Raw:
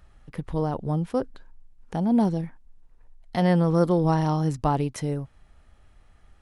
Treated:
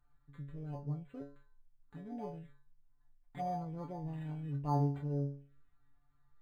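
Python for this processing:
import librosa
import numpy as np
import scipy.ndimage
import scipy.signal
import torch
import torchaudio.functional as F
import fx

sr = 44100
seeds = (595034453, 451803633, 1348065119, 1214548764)

y = fx.stiff_resonator(x, sr, f0_hz=140.0, decay_s=0.46, stiffness=0.002)
y = fx.env_phaser(y, sr, low_hz=500.0, high_hz=2600.0, full_db=-32.0)
y = np.interp(np.arange(len(y)), np.arange(len(y))[::8], y[::8])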